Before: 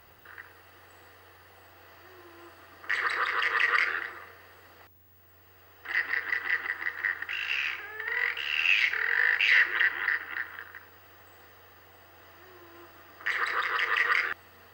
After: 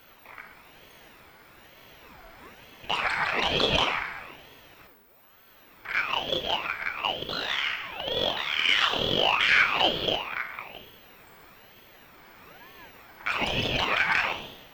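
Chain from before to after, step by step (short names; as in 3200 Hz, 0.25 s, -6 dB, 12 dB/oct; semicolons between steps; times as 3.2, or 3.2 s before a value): one diode to ground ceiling -12 dBFS; Schroeder reverb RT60 0.93 s, combs from 29 ms, DRR 6 dB; ring modulator with a swept carrier 880 Hz, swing 65%, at 1.1 Hz; gain +4.5 dB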